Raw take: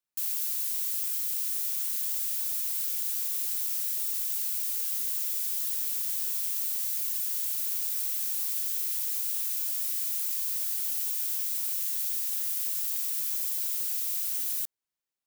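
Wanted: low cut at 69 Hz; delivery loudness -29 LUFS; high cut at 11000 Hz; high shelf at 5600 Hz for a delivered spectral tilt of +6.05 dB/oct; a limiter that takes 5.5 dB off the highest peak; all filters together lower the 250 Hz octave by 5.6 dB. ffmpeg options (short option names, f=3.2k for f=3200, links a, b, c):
-af "highpass=69,lowpass=11k,equalizer=f=250:t=o:g=-8,highshelf=f=5.6k:g=8.5,volume=1dB,alimiter=limit=-22dB:level=0:latency=1"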